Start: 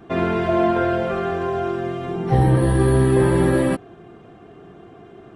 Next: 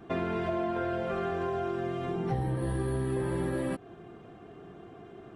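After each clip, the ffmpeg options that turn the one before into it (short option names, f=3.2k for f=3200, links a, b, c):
-af "acompressor=threshold=-23dB:ratio=6,volume=-5dB"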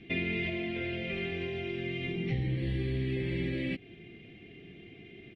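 -af "firequalizer=gain_entry='entry(250,0);entry(980,-23);entry(1500,-14);entry(2100,14);entry(10000,-27)':delay=0.05:min_phase=1"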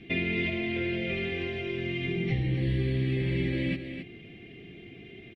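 -af "aecho=1:1:267:0.376,volume=3dB"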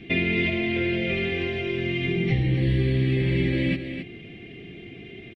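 -af "aresample=22050,aresample=44100,volume=5.5dB"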